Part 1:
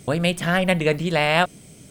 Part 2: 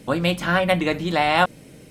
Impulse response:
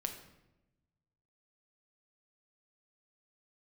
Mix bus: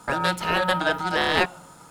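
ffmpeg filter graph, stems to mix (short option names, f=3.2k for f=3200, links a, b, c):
-filter_complex "[0:a]highpass=67,aeval=exprs='val(0)*sin(2*PI*1100*n/s)':c=same,volume=-1dB[a];[1:a]equalizer=f=2k:t=o:w=0.54:g=-8,volume=-12.5dB,asplit=2[b][c];[c]volume=-5.5dB[d];[2:a]atrim=start_sample=2205[e];[d][e]afir=irnorm=-1:irlink=0[f];[a][b][f]amix=inputs=3:normalize=0"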